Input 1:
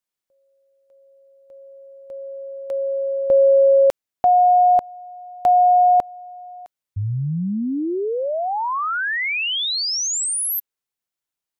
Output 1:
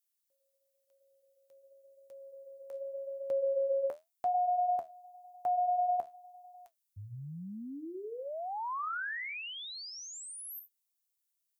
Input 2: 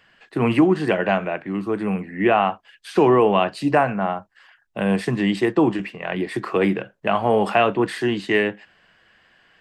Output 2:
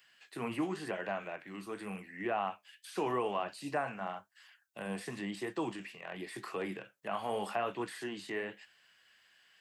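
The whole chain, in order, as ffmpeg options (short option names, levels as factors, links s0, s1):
-filter_complex "[0:a]flanger=delay=6.7:depth=7.5:regen=-63:speed=0.91:shape=triangular,acrossover=split=2600[s0][s1];[s1]acompressor=threshold=0.02:ratio=4:attack=1:release=60[s2];[s0][s2]amix=inputs=2:normalize=0,aderivative,acrossover=split=1500[s3][s4];[s4]acompressor=threshold=0.00316:ratio=6:attack=0.12:release=50:knee=1:detection=rms[s5];[s3][s5]amix=inputs=2:normalize=0,equalizer=f=71:w=0.31:g=14.5,volume=2"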